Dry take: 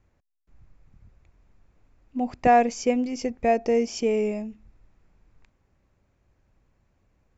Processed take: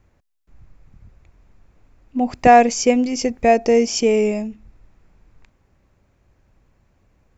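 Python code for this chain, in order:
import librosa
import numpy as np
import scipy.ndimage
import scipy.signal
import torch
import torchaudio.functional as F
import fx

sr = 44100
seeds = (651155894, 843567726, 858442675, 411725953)

y = fx.high_shelf(x, sr, hz=4100.0, db=7.5, at=(2.3, 4.48))
y = F.gain(torch.from_numpy(y), 7.0).numpy()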